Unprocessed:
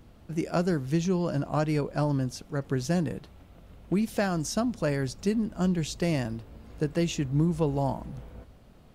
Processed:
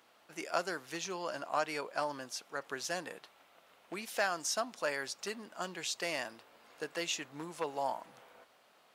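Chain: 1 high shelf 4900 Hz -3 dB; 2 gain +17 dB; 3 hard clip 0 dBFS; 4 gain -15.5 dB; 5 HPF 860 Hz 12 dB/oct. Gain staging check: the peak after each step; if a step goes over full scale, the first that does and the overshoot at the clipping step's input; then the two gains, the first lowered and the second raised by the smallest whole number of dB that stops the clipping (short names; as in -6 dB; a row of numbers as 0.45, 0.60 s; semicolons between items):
-13.5, +3.5, 0.0, -15.5, -16.0 dBFS; step 2, 3.5 dB; step 2 +13 dB, step 4 -11.5 dB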